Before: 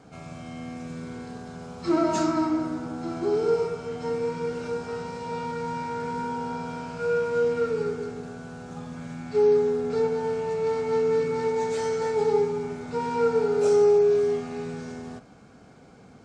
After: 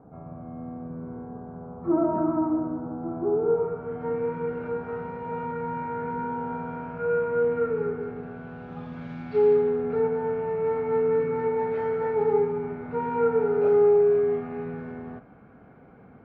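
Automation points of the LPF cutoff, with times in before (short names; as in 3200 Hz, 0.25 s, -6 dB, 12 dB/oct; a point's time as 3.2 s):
LPF 24 dB/oct
3.35 s 1100 Hz
4.18 s 2000 Hz
7.94 s 2000 Hz
9.19 s 3800 Hz
10 s 2100 Hz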